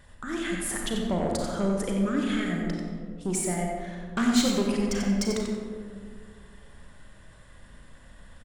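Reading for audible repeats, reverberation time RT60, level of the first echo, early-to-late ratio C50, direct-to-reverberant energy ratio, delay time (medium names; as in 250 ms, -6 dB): 1, 2.1 s, -6.0 dB, 0.0 dB, -0.5 dB, 91 ms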